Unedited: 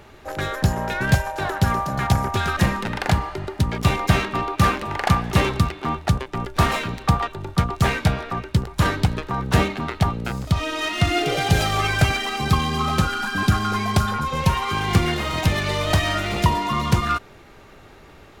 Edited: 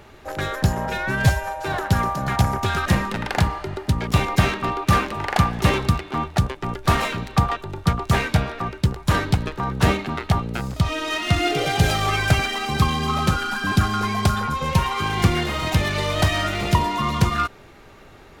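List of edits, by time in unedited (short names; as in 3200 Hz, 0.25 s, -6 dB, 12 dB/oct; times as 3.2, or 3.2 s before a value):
0.86–1.44 stretch 1.5×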